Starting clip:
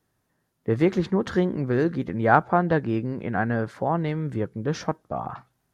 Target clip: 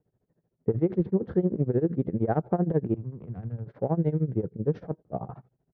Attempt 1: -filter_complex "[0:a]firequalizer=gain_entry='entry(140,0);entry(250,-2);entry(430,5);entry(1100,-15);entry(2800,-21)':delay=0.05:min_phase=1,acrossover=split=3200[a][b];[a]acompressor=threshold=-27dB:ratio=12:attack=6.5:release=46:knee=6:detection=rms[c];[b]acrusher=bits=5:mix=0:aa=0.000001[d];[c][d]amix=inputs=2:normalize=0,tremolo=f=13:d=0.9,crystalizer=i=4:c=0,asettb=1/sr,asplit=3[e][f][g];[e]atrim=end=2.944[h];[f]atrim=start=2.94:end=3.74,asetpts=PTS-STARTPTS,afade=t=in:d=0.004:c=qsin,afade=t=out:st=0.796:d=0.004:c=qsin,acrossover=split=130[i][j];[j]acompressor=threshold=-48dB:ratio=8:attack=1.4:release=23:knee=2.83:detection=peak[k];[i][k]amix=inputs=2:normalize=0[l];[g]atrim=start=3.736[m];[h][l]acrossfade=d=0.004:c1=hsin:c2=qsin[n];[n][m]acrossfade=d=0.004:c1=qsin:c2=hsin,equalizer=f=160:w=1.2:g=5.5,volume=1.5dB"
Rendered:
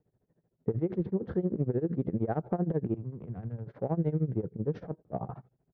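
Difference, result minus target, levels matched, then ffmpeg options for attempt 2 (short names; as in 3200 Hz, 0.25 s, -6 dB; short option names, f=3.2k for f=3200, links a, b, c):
compressor: peak gain reduction +6 dB
-filter_complex "[0:a]firequalizer=gain_entry='entry(140,0);entry(250,-2);entry(430,5);entry(1100,-15);entry(2800,-21)':delay=0.05:min_phase=1,acrossover=split=3200[a][b];[a]acompressor=threshold=-20.5dB:ratio=12:attack=6.5:release=46:knee=6:detection=rms[c];[b]acrusher=bits=5:mix=0:aa=0.000001[d];[c][d]amix=inputs=2:normalize=0,tremolo=f=13:d=0.9,crystalizer=i=4:c=0,asettb=1/sr,asplit=3[e][f][g];[e]atrim=end=2.944[h];[f]atrim=start=2.94:end=3.74,asetpts=PTS-STARTPTS,afade=t=in:d=0.004:c=qsin,afade=t=out:st=0.796:d=0.004:c=qsin,acrossover=split=130[i][j];[j]acompressor=threshold=-48dB:ratio=8:attack=1.4:release=23:knee=2.83:detection=peak[k];[i][k]amix=inputs=2:normalize=0[l];[g]atrim=start=3.736[m];[h][l]acrossfade=d=0.004:c1=hsin:c2=qsin[n];[n][m]acrossfade=d=0.004:c1=qsin:c2=hsin,equalizer=f=160:w=1.2:g=5.5,volume=1.5dB"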